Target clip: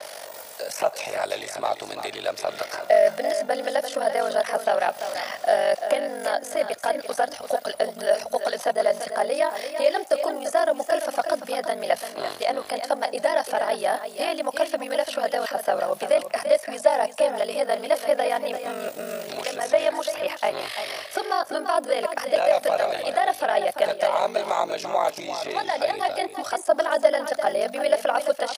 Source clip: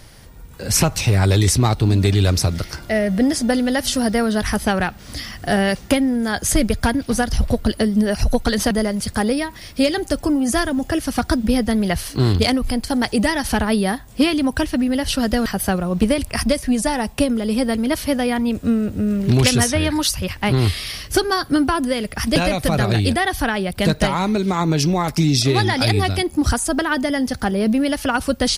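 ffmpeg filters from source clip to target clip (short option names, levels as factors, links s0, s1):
-filter_complex "[0:a]highshelf=f=3200:g=11.5,areverse,acompressor=threshold=0.0708:ratio=6,areverse,aeval=exprs='val(0)*sin(2*PI*24*n/s)':c=same,acrossover=split=1000|2200[s0][s1][s2];[s0]acompressor=threshold=0.0224:ratio=4[s3];[s1]acompressor=threshold=0.00631:ratio=4[s4];[s2]acompressor=threshold=0.00562:ratio=4[s5];[s3][s4][s5]amix=inputs=3:normalize=0,highpass=f=620:t=q:w=4.9,asplit=2[s6][s7];[s7]aecho=0:1:341:0.355[s8];[s6][s8]amix=inputs=2:normalize=0,adynamicequalizer=threshold=0.00282:dfrequency=4400:dqfactor=0.7:tfrequency=4400:tqfactor=0.7:attack=5:release=100:ratio=0.375:range=2.5:mode=cutabove:tftype=highshelf,volume=2.66"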